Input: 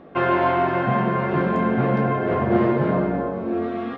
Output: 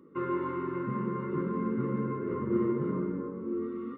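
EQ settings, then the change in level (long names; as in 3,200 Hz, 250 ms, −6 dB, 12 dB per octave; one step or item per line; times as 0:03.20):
Savitzky-Golay smoothing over 65 samples
high-pass filter 290 Hz 6 dB per octave
Butterworth band-reject 710 Hz, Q 0.89
−4.5 dB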